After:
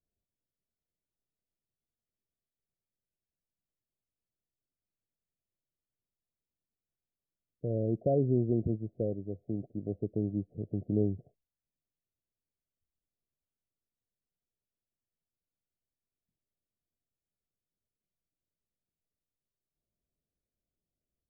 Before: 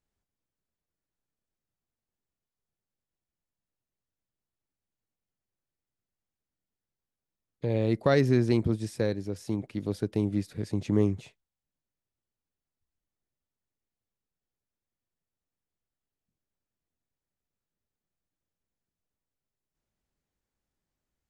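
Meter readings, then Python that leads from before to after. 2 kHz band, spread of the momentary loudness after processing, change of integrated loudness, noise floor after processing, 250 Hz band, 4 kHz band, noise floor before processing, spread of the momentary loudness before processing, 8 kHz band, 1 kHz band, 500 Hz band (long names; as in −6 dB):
below −40 dB, 10 LU, −4.5 dB, below −85 dBFS, −4.5 dB, below −35 dB, below −85 dBFS, 10 LU, below −25 dB, can't be measured, −4.5 dB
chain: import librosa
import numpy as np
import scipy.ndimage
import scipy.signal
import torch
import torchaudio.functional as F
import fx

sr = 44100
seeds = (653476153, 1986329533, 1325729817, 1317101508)

y = scipy.signal.sosfilt(scipy.signal.cheby1(8, 1.0, 720.0, 'lowpass', fs=sr, output='sos'), x)
y = y * 10.0 ** (-4.0 / 20.0)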